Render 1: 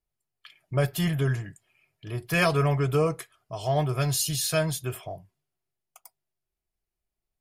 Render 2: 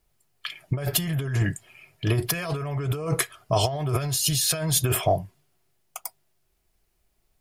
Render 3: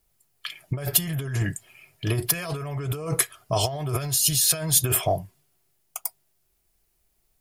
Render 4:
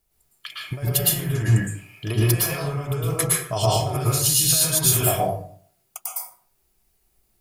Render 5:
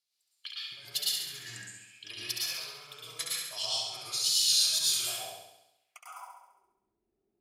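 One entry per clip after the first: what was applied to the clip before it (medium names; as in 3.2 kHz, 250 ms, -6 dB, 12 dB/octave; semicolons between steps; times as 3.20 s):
compressor with a negative ratio -34 dBFS, ratio -1; trim +8.5 dB
treble shelf 6.5 kHz +9 dB; trim -2 dB
plate-style reverb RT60 0.54 s, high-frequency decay 0.6×, pre-delay 100 ms, DRR -5 dB; trim -2.5 dB
wow and flutter 48 cents; band-pass sweep 4.3 kHz -> 320 Hz, 5.66–6.70 s; flutter echo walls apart 11.6 m, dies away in 0.87 s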